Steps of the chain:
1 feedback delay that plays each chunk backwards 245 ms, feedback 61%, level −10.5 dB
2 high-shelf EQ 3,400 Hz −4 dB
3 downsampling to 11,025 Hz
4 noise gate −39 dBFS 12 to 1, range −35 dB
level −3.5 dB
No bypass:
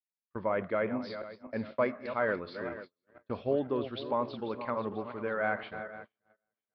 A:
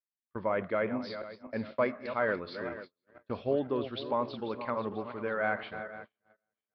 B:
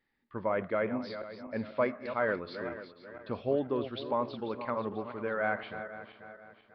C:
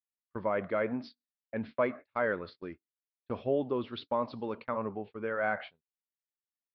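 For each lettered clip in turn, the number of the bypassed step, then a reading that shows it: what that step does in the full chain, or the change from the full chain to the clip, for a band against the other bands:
2, 4 kHz band +2.0 dB
4, change in momentary loudness spread +4 LU
1, change in momentary loudness spread +1 LU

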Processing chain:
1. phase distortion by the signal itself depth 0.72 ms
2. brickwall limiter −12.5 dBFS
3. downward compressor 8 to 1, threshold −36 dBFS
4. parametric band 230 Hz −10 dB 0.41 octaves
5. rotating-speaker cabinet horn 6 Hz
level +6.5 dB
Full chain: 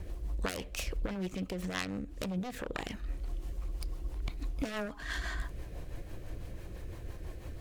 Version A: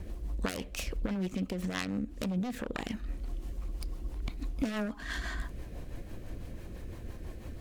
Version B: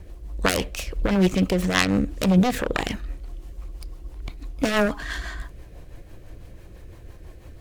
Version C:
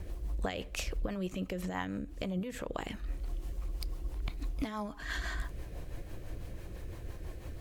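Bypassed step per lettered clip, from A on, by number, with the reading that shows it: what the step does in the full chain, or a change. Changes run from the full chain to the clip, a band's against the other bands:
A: 4, 250 Hz band +4.5 dB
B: 3, average gain reduction 6.0 dB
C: 1, change in crest factor −2.0 dB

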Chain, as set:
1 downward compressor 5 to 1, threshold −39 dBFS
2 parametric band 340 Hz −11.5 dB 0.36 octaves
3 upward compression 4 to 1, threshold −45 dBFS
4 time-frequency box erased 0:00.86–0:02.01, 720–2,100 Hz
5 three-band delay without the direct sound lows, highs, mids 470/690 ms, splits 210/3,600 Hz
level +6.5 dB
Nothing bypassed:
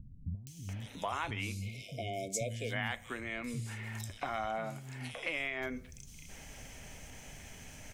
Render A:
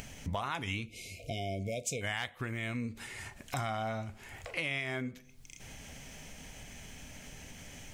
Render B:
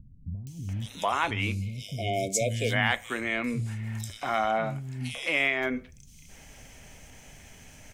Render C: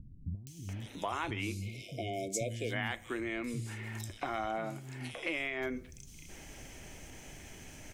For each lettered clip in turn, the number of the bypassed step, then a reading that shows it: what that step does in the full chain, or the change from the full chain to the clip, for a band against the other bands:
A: 5, echo-to-direct ratio 21.0 dB to none audible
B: 1, average gain reduction 6.5 dB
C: 2, 250 Hz band +3.5 dB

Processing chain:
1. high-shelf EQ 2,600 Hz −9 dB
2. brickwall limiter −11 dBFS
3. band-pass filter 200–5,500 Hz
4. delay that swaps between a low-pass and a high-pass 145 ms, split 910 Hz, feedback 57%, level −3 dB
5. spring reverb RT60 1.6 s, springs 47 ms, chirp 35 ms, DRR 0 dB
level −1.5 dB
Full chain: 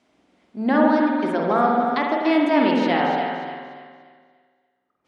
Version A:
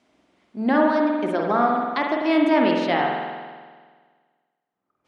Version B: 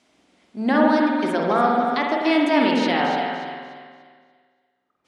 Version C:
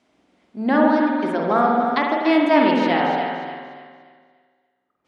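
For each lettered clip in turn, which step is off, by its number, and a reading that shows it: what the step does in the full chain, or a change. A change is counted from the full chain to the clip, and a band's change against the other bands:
4, echo-to-direct ratio 2.0 dB to 0.0 dB
1, 4 kHz band +4.5 dB
2, change in crest factor +1.5 dB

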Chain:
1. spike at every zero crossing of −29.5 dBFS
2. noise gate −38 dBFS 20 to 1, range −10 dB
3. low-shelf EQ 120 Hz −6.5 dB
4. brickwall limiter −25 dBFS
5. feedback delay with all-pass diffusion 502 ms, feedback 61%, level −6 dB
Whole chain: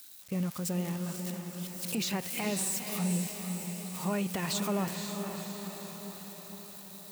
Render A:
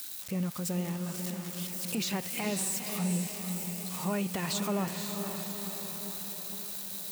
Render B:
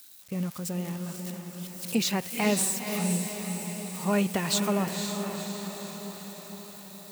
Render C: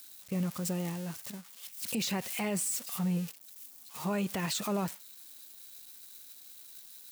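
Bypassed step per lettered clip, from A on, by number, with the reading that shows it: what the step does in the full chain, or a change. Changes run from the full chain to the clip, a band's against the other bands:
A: 2, change in momentary loudness spread −7 LU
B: 4, change in crest factor +3.5 dB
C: 5, echo-to-direct ratio −4.0 dB to none audible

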